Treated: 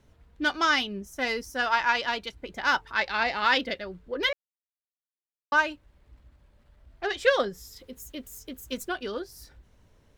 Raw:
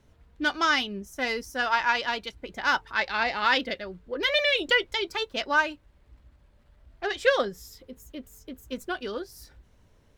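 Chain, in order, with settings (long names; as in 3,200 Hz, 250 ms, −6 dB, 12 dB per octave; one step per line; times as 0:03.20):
0:04.33–0:05.52: silence
0:07.76–0:08.89: high-shelf EQ 2,500 Hz +8.5 dB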